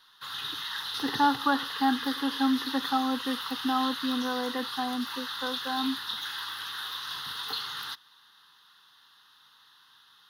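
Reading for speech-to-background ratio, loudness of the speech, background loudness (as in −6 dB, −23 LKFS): 4.0 dB, −30.0 LKFS, −34.0 LKFS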